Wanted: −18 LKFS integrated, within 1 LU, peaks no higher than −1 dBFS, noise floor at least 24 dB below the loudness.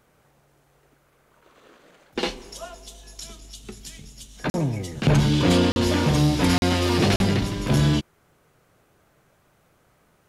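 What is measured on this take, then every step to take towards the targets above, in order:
number of dropouts 4; longest dropout 41 ms; integrated loudness −21.5 LKFS; sample peak −7.5 dBFS; target loudness −18.0 LKFS
→ repair the gap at 0:04.50/0:05.72/0:06.58/0:07.16, 41 ms
level +3.5 dB

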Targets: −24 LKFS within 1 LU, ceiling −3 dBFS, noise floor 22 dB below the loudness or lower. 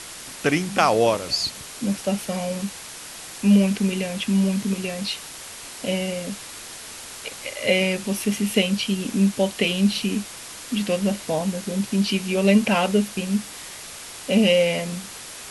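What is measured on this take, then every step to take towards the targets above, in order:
background noise floor −38 dBFS; target noise floor −45 dBFS; integrated loudness −22.5 LKFS; sample peak −3.5 dBFS; target loudness −24.0 LKFS
→ noise reduction from a noise print 7 dB
level −1.5 dB

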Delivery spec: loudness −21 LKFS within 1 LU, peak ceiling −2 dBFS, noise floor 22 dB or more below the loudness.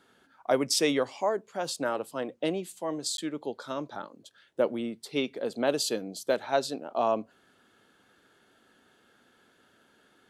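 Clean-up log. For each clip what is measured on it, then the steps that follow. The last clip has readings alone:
number of dropouts 1; longest dropout 12 ms; integrated loudness −30.5 LKFS; sample peak −12.5 dBFS; target loudness −21.0 LKFS
→ repair the gap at 0:03.17, 12 ms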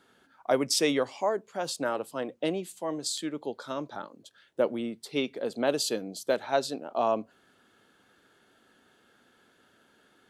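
number of dropouts 0; integrated loudness −30.5 LKFS; sample peak −12.5 dBFS; target loudness −21.0 LKFS
→ level +9.5 dB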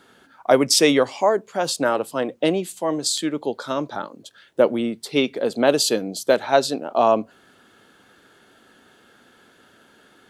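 integrated loudness −21.0 LKFS; sample peak −3.0 dBFS; background noise floor −55 dBFS

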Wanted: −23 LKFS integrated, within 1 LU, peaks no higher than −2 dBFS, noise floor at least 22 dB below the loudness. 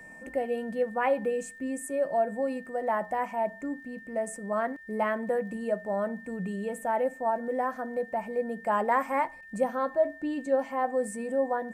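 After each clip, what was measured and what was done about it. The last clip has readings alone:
crackle rate 30 per second; interfering tone 1,800 Hz; level of the tone −46 dBFS; integrated loudness −30.5 LKFS; sample peak −12.5 dBFS; target loudness −23.0 LKFS
→ click removal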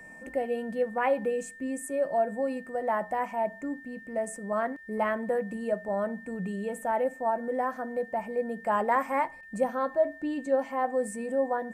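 crackle rate 0 per second; interfering tone 1,800 Hz; level of the tone −46 dBFS
→ notch filter 1,800 Hz, Q 30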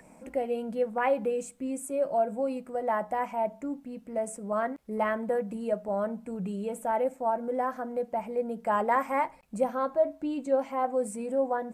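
interfering tone none found; integrated loudness −30.5 LKFS; sample peak −13.0 dBFS; target loudness −23.0 LKFS
→ level +7.5 dB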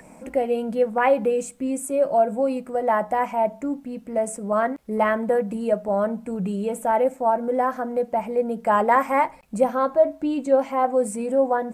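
integrated loudness −23.0 LKFS; sample peak −5.5 dBFS; background noise floor −47 dBFS

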